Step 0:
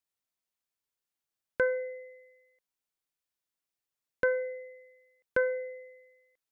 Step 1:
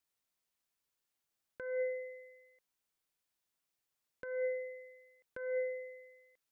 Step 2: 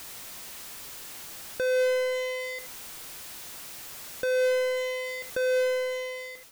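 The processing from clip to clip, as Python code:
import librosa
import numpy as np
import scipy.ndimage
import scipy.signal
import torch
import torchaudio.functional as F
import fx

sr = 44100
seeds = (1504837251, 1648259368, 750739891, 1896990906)

y1 = fx.over_compress(x, sr, threshold_db=-35.0, ratio=-1.0)
y1 = y1 * librosa.db_to_amplitude(-2.0)
y2 = fx.fade_out_tail(y1, sr, length_s=1.14)
y2 = y2 + 10.0 ** (-22.0 / 20.0) * np.pad(y2, (int(77 * sr / 1000.0), 0))[:len(y2)]
y2 = fx.power_curve(y2, sr, exponent=0.35)
y2 = y2 * librosa.db_to_amplitude(8.0)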